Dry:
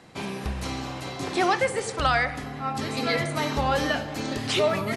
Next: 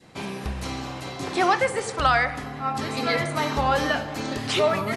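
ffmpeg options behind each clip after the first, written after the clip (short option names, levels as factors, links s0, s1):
-af "adynamicequalizer=threshold=0.0178:dfrequency=1100:dqfactor=1:tfrequency=1100:tqfactor=1:attack=5:release=100:ratio=0.375:range=2:mode=boostabove:tftype=bell"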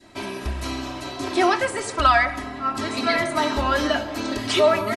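-af "aecho=1:1:3.1:0.87"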